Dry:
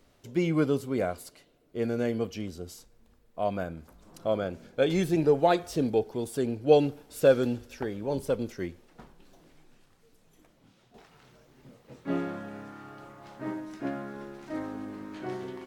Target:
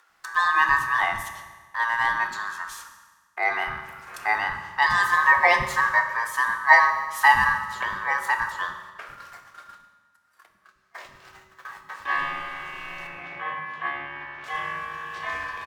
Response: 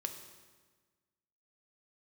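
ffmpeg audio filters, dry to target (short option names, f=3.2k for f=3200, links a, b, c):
-filter_complex "[0:a]agate=range=-47dB:threshold=-54dB:ratio=16:detection=peak,acompressor=mode=upward:threshold=-35dB:ratio=2.5,aeval=exprs='val(0)*sin(2*PI*1400*n/s)':c=same,asettb=1/sr,asplit=3[a][b][c];[a]atrim=end=13.074[d];[b]atrim=start=13.07:end=14.44,asetpts=PTS-STARTPTS,afade=t=in:d=0.004:c=qsin,afade=t=out:st=1.366:d=0.004:c=qsin,highpass=100,lowpass=2.6k[e];[c]atrim=start=14.436[f];[d][e]acrossfade=d=0.004:c1=hsin:c2=qsin[g];[g][f]acrossfade=d=0.004:c1=qsin:c2=hsin,acrossover=split=310[h][i];[h]adelay=100[j];[j][i]amix=inputs=2:normalize=0[k];[1:a]atrim=start_sample=2205[l];[k][l]afir=irnorm=-1:irlink=0,volume=8.5dB"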